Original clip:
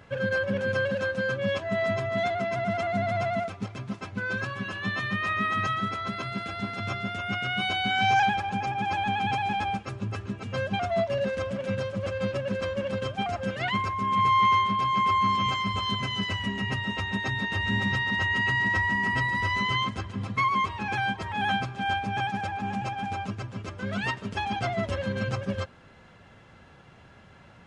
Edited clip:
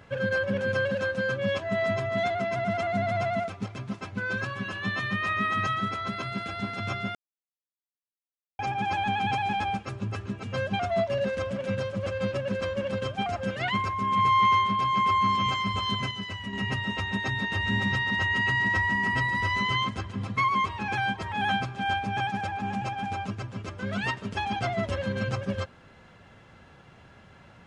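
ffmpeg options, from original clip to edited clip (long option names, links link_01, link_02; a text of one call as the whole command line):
ffmpeg -i in.wav -filter_complex "[0:a]asplit=5[link_01][link_02][link_03][link_04][link_05];[link_01]atrim=end=7.15,asetpts=PTS-STARTPTS,afade=type=out:start_time=7.146:duration=0.004:curve=hsin[link_06];[link_02]atrim=start=7.15:end=8.59,asetpts=PTS-STARTPTS,volume=0[link_07];[link_03]atrim=start=8.59:end=16.112,asetpts=PTS-STARTPTS,afade=type=in:duration=0.004:curve=hsin[link_08];[link_04]atrim=start=16.108:end=16.532,asetpts=PTS-STARTPTS,volume=-6dB[link_09];[link_05]atrim=start=16.528[link_10];[link_06][link_07][link_08]concat=n=3:v=0:a=1[link_11];[link_11][link_09]acrossfade=duration=0.004:curve1=hsin:curve2=hsin[link_12];[link_12][link_10]acrossfade=duration=0.004:curve1=hsin:curve2=hsin" out.wav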